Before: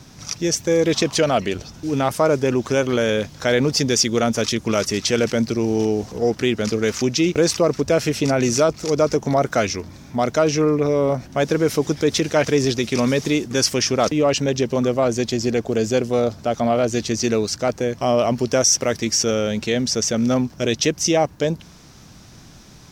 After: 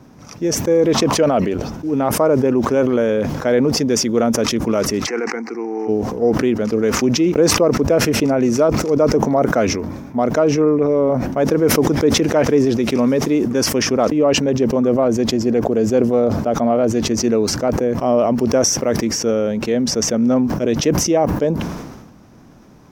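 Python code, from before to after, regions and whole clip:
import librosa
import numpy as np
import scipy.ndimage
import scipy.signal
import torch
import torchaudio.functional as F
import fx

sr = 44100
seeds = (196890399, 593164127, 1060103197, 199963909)

y = fx.cabinet(x, sr, low_hz=320.0, low_slope=24, high_hz=6600.0, hz=(510.0, 760.0, 2100.0), db=(6, 10, 8), at=(5.06, 5.87), fade=0.02)
y = fx.fixed_phaser(y, sr, hz=1400.0, stages=4, at=(5.06, 5.87), fade=0.02)
y = fx.dmg_crackle(y, sr, seeds[0], per_s=490.0, level_db=-56.0, at=(5.06, 5.87), fade=0.02)
y = fx.graphic_eq(y, sr, hz=(250, 500, 1000, 4000, 8000), db=(8, 6, 5, -8, -7))
y = fx.sustainer(y, sr, db_per_s=44.0)
y = y * librosa.db_to_amplitude(-5.0)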